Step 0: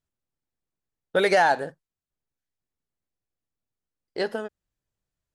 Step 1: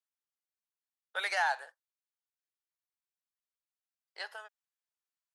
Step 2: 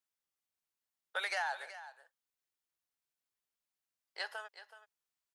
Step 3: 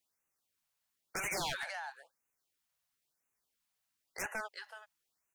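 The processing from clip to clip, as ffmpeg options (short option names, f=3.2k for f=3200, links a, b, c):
-af "highpass=f=850:w=0.5412,highpass=f=850:w=1.3066,volume=-7dB"
-af "acompressor=threshold=-35dB:ratio=6,aecho=1:1:375:0.2,volume=2dB"
-af "aeval=exprs='0.0133*(abs(mod(val(0)/0.0133+3,4)-2)-1)':c=same,afftfilt=real='re*(1-between(b*sr/1024,300*pow(4200/300,0.5+0.5*sin(2*PI*0.99*pts/sr))/1.41,300*pow(4200/300,0.5+0.5*sin(2*PI*0.99*pts/sr))*1.41))':imag='im*(1-between(b*sr/1024,300*pow(4200/300,0.5+0.5*sin(2*PI*0.99*pts/sr))/1.41,300*pow(4200/300,0.5+0.5*sin(2*PI*0.99*pts/sr))*1.41))':win_size=1024:overlap=0.75,volume=7dB"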